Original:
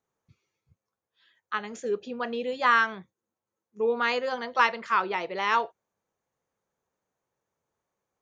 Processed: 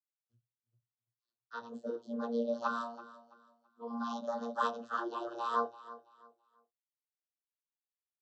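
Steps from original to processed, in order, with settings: frequency axis rescaled in octaves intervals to 110%; expander -58 dBFS; peaking EQ 2.2 kHz +4.5 dB 1 oct; 2.67–4.27 s: static phaser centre 500 Hz, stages 6; bass shelf 260 Hz -12 dB; vocoder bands 32, saw 117 Hz; Butterworth band-stop 2.2 kHz, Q 0.97; on a send: feedback delay 332 ms, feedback 28%, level -17 dB; on the sum: trim -3 dB

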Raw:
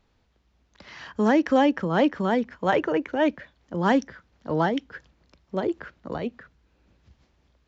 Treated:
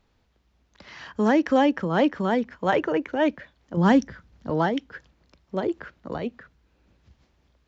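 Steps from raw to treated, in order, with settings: 3.77–4.50 s: tone controls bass +9 dB, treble +2 dB

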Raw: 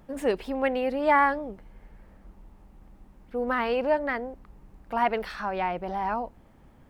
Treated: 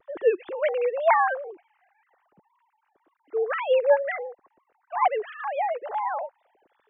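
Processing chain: formants replaced by sine waves; wow and flutter 120 cents; trim +2 dB

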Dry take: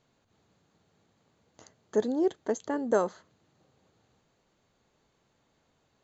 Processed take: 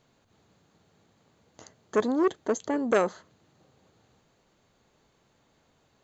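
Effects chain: transformer saturation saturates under 1.1 kHz; trim +4.5 dB

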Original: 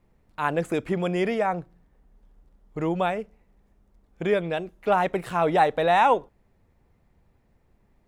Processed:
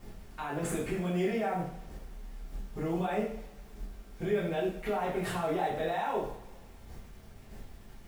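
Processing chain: bass shelf 67 Hz +9.5 dB; in parallel at +3 dB: compression, threshold -34 dBFS, peak gain reduction 17.5 dB; on the sum: square tremolo 1.6 Hz, depth 60%, duty 15%; bit crusher 11-bit; peak limiter -33.5 dBFS, peak gain reduction 25 dB; short-mantissa float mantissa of 4-bit; two-slope reverb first 0.5 s, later 1.6 s, DRR -8 dB

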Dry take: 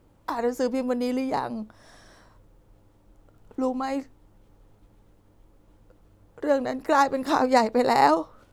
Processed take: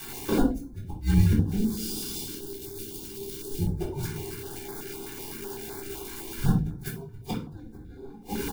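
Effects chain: zero-crossing glitches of -23 dBFS; comb 1.5 ms, depth 88%; feedback delay 180 ms, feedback 58%, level -22 dB; frequency shift -430 Hz; word length cut 8-bit, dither none; 1.56–3.64 s: high-order bell 1.2 kHz -11.5 dB 2.3 oct; inverted gate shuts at -15 dBFS, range -36 dB; treble shelf 2.8 kHz -11 dB; simulated room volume 320 m³, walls furnished, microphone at 3.8 m; step-sequenced notch 7.9 Hz 610–2800 Hz

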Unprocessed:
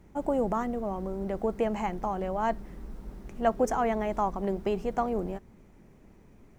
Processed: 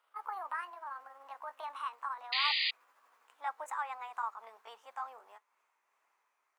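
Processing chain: pitch bend over the whole clip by +7 st ending unshifted; painted sound noise, 2.32–2.71 s, 1.8–4.9 kHz -22 dBFS; ladder high-pass 900 Hz, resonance 45%; trim -1.5 dB

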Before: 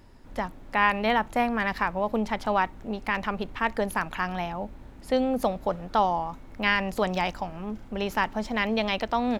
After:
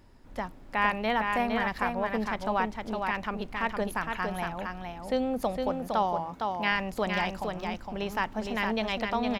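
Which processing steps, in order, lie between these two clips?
5.70–6.72 s: high-pass 74 Hz; delay 460 ms -4.5 dB; trim -4 dB

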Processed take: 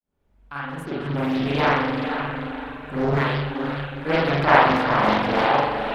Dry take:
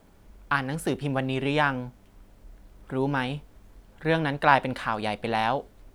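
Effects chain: fade-in on the opening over 1.92 s; echo that smears into a reverb 488 ms, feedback 44%, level -6.5 dB; spring tank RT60 1.5 s, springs 42 ms, chirp 20 ms, DRR -9 dB; reverb removal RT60 0.55 s; loudspeaker Doppler distortion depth 0.82 ms; trim -2 dB

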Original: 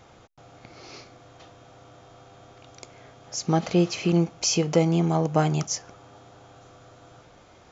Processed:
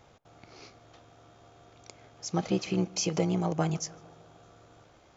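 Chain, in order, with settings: granular stretch 0.67×, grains 29 ms; tape echo 149 ms, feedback 77%, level -22 dB, low-pass 2.1 kHz; trim -5 dB

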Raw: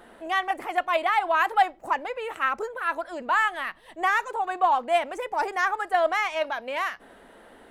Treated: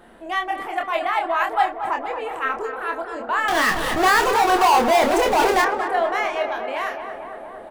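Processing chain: bass shelf 290 Hz +6 dB; 3.48–5.62 s: power-law waveshaper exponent 0.35; doubling 27 ms -4.5 dB; tape echo 232 ms, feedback 85%, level -7 dB, low-pass 1.8 kHz; trim -1 dB

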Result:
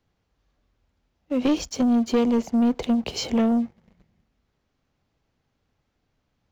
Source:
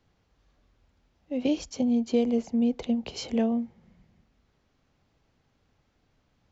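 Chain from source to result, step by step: waveshaping leveller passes 2

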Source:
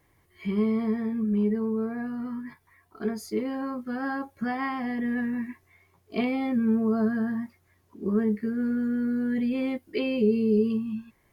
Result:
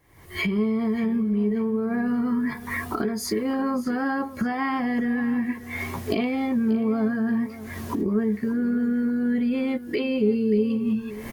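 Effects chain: recorder AGC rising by 67 dB/s; on a send: feedback delay 584 ms, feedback 31%, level -15.5 dB; on the sum: trim +1 dB

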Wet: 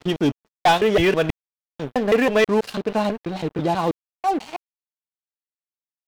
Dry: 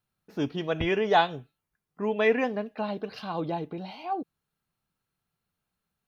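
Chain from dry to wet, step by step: slices played last to first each 163 ms, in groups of 4; crossover distortion -49.5 dBFS; waveshaping leveller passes 3

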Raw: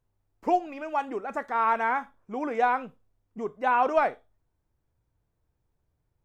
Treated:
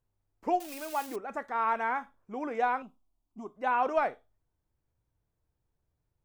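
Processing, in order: 0.60–1.16 s: zero-crossing glitches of -27 dBFS; 2.82–3.56 s: static phaser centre 480 Hz, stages 6; trim -4.5 dB

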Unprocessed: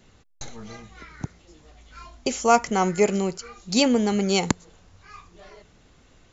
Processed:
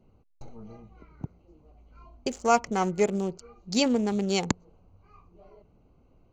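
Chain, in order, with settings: local Wiener filter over 25 samples; trim -4 dB

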